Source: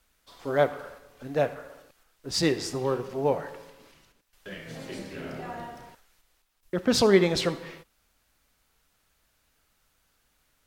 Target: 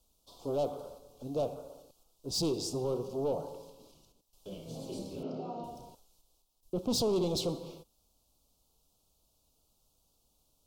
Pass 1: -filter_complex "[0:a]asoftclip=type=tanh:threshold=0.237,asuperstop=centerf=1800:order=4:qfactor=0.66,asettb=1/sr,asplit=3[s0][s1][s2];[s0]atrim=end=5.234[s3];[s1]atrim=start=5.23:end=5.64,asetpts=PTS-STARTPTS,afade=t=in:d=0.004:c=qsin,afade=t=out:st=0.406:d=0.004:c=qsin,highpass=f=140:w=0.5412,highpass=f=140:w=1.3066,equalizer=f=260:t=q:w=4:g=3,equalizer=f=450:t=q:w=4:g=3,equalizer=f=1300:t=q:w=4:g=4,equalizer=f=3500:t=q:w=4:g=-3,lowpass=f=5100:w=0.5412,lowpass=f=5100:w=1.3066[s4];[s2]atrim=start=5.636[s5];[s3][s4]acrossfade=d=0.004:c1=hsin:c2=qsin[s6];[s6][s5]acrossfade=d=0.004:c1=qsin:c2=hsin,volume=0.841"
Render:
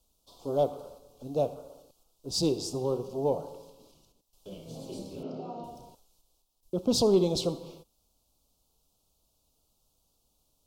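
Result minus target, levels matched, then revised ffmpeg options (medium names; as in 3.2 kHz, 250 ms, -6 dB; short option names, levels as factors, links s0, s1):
saturation: distortion -12 dB
-filter_complex "[0:a]asoftclip=type=tanh:threshold=0.0596,asuperstop=centerf=1800:order=4:qfactor=0.66,asettb=1/sr,asplit=3[s0][s1][s2];[s0]atrim=end=5.234[s3];[s1]atrim=start=5.23:end=5.64,asetpts=PTS-STARTPTS,afade=t=in:d=0.004:c=qsin,afade=t=out:st=0.406:d=0.004:c=qsin,highpass=f=140:w=0.5412,highpass=f=140:w=1.3066,equalizer=f=260:t=q:w=4:g=3,equalizer=f=450:t=q:w=4:g=3,equalizer=f=1300:t=q:w=4:g=4,equalizer=f=3500:t=q:w=4:g=-3,lowpass=f=5100:w=0.5412,lowpass=f=5100:w=1.3066[s4];[s2]atrim=start=5.636[s5];[s3][s4]acrossfade=d=0.004:c1=hsin:c2=qsin[s6];[s6][s5]acrossfade=d=0.004:c1=qsin:c2=hsin,volume=0.841"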